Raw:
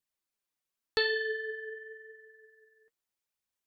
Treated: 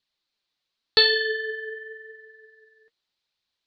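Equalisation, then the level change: resonant low-pass 4.1 kHz, resonance Q 3.9; +6.0 dB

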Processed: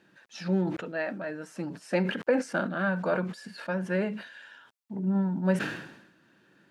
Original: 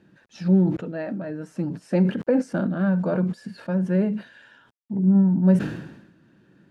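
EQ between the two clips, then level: bass shelf 180 Hz -7 dB; bass shelf 490 Hz -11 dB; dynamic bell 2.1 kHz, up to +4 dB, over -47 dBFS, Q 0.74; +3.0 dB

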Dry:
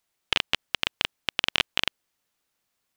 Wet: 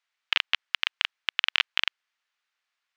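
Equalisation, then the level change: band-pass filter 1.6 kHz, Q 0.97; distance through air 97 m; tilt EQ +4 dB/octave; 0.0 dB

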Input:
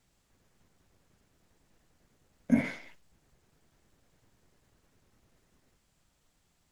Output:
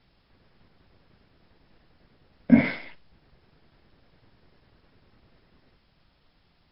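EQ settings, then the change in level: brick-wall FIR low-pass 5.4 kHz; +8.5 dB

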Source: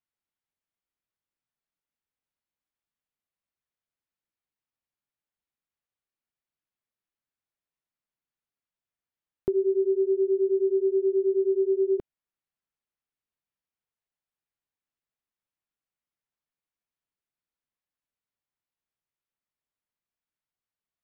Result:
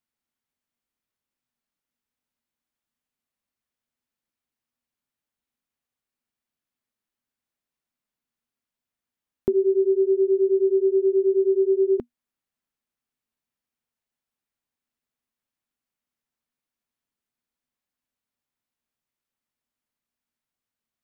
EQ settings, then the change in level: peaking EQ 240 Hz +11 dB 0.23 oct; +3.5 dB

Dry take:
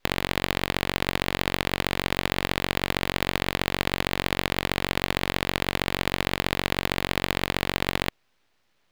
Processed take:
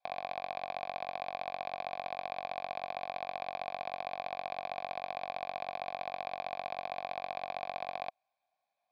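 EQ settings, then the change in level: vowel filter a; elliptic low-pass 9.2 kHz; static phaser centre 1.9 kHz, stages 8; +3.5 dB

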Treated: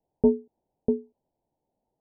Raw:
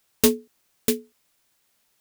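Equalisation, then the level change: steep low-pass 920 Hz 96 dB/octave; 0.0 dB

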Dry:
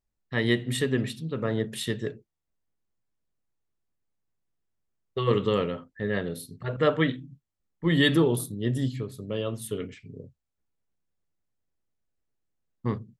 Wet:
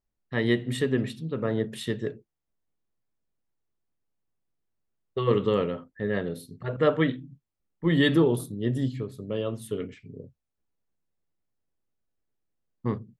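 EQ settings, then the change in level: tilt EQ -2 dB/octave; bass shelf 150 Hz -11.5 dB; 0.0 dB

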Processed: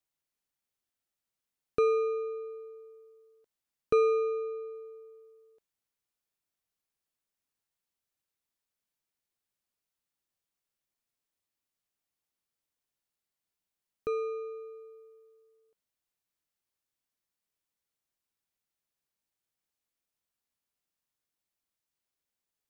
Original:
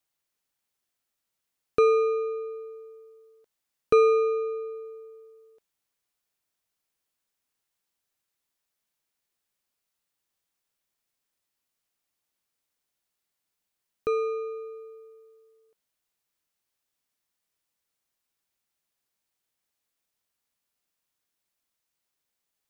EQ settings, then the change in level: bass shelf 360 Hz +4 dB; -7.0 dB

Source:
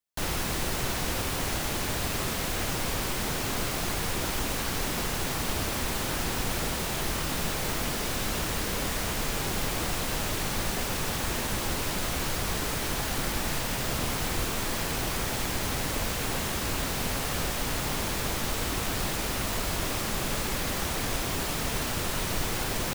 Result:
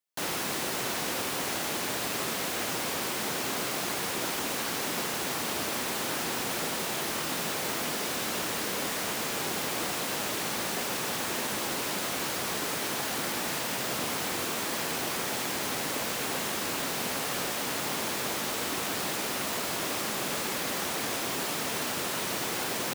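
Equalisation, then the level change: high-pass 220 Hz 12 dB/octave; 0.0 dB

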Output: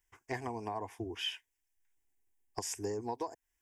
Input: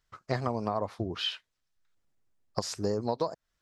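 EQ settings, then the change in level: treble shelf 3.4 kHz +11.5 dB; static phaser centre 850 Hz, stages 8; -4.0 dB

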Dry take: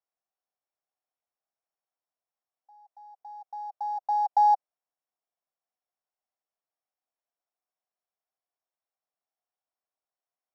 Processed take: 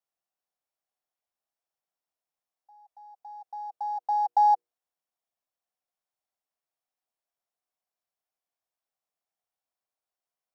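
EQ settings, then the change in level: hum notches 60/120/180/240/300/360/420/480 Hz; 0.0 dB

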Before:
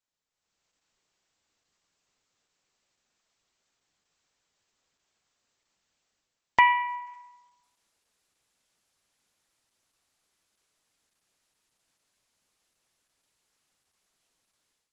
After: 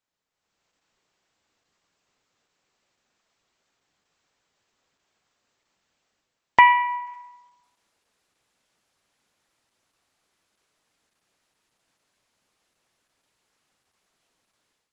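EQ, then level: bass shelf 75 Hz -6 dB; treble shelf 4 kHz -8.5 dB; +6.5 dB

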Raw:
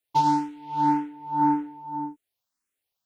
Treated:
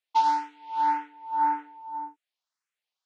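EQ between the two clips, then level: dynamic bell 1.7 kHz, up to +4 dB, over -36 dBFS, Q 1; band-pass 780–5500 Hz; 0.0 dB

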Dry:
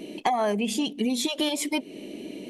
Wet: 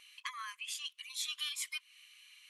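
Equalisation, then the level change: brick-wall FIR high-pass 1 kHz; -8.0 dB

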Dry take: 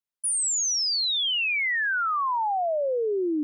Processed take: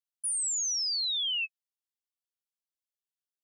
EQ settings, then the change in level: brick-wall FIR high-pass 2.6 kHz; -5.0 dB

